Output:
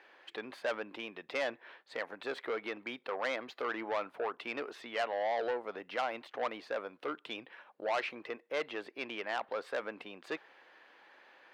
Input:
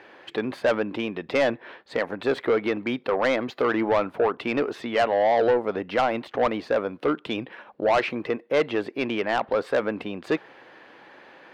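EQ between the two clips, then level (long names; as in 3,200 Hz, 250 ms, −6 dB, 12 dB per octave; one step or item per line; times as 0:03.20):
high-pass filter 850 Hz 6 dB per octave
−8.5 dB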